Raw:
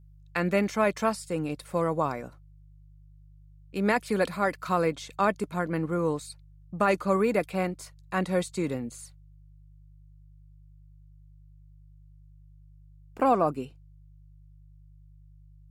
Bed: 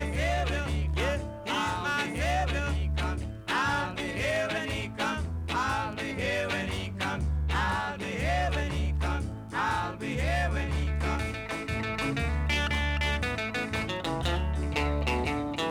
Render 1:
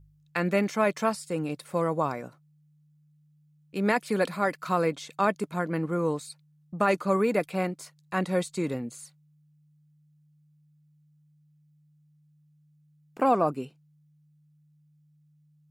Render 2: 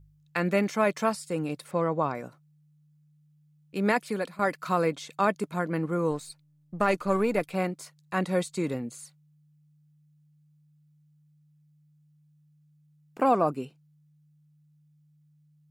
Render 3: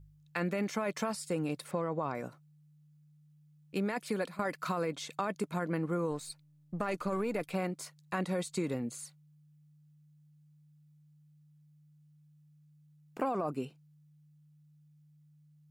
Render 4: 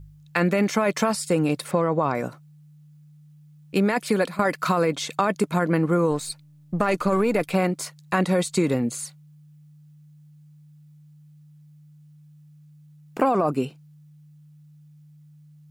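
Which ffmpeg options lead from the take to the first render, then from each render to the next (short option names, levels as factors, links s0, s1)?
-af "bandreject=f=50:t=h:w=4,bandreject=f=100:t=h:w=4"
-filter_complex "[0:a]asettb=1/sr,asplit=3[s0][s1][s2];[s0]atrim=end=1.714[s3];[s1]atrim=start=1.71:end=2.15,asetpts=PTS-STARTPTS,afade=t=in:d=0.004:c=qsin,afade=t=out:st=0.436:d=0.004:c=qsin,lowpass=4300[s4];[s2]atrim=start=2.146[s5];[s3][s4]acrossfade=d=0.004:c1=hsin:c2=qsin[s6];[s6][s5]acrossfade=d=0.004:c1=qsin:c2=hsin,asettb=1/sr,asplit=3[s7][s8][s9];[s7]atrim=end=6.114[s10];[s8]atrim=start=6.11:end=7.54,asetpts=PTS-STARTPTS,afade=t=in:d=0.004:c=qsin,afade=t=out:st=1.426:d=0.004:c=qsin,aeval=exprs='if(lt(val(0),0),0.708*val(0),val(0))':c=same[s11];[s9]atrim=start=7.536[s12];[s10][s11]acrossfade=d=0.004:c1=hsin:c2=qsin[s13];[s13][s12]acrossfade=d=0.004:c1=qsin:c2=hsin,asplit=2[s14][s15];[s14]atrim=end=4.39,asetpts=PTS-STARTPTS,afade=t=out:st=3.97:d=0.42:silence=0.16788[s16];[s15]atrim=start=4.39,asetpts=PTS-STARTPTS,afade=t=in:d=0.004:c=hsin:silence=0.16788[s17];[s16][s17]concat=n=2:v=0:a=1"
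-af "alimiter=limit=0.119:level=0:latency=1:release=12,acompressor=threshold=0.0355:ratio=6"
-af "volume=3.98"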